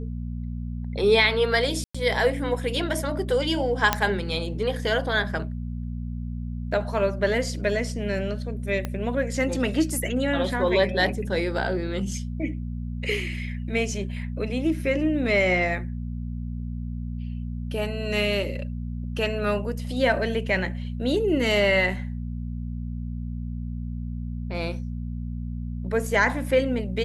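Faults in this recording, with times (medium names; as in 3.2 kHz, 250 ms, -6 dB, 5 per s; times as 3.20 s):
hum 60 Hz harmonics 4 -31 dBFS
1.84–1.95 s: dropout 105 ms
3.93 s: pop -4 dBFS
8.85 s: pop -15 dBFS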